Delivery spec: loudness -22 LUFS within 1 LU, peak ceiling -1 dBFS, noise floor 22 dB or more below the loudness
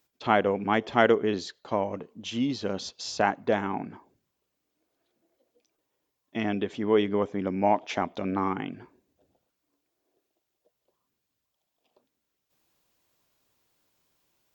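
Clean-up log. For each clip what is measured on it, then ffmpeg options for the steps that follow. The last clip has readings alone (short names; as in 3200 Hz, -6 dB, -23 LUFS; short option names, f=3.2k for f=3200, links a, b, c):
loudness -27.5 LUFS; peak -5.0 dBFS; loudness target -22.0 LUFS
-> -af "volume=5.5dB,alimiter=limit=-1dB:level=0:latency=1"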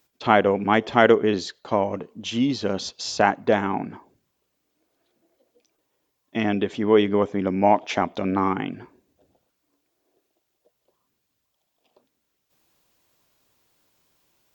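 loudness -22.5 LUFS; peak -1.0 dBFS; noise floor -76 dBFS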